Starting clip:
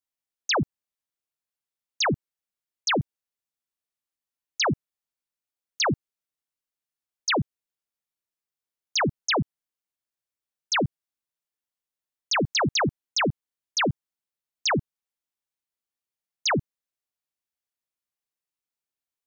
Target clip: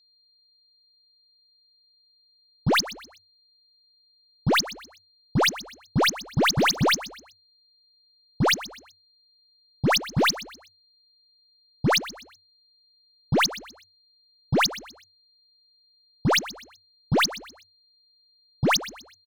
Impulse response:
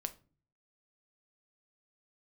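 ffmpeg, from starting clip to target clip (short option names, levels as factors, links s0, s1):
-filter_complex "[0:a]areverse,adynamicsmooth=sensitivity=7:basefreq=3600,aeval=exprs='val(0)+0.00178*sin(2*PI*4200*n/s)':c=same,aeval=exprs='0.112*(cos(1*acos(clip(val(0)/0.112,-1,1)))-cos(1*PI/2))+0.00398*(cos(4*acos(clip(val(0)/0.112,-1,1)))-cos(4*PI/2))+0.01*(cos(7*acos(clip(val(0)/0.112,-1,1)))-cos(7*PI/2))':c=same,asplit=4[s0][s1][s2][s3];[s1]adelay=125,afreqshift=31,volume=0.158[s4];[s2]adelay=250,afreqshift=62,volume=0.0556[s5];[s3]adelay=375,afreqshift=93,volume=0.0195[s6];[s0][s4][s5][s6]amix=inputs=4:normalize=0,volume=1.41"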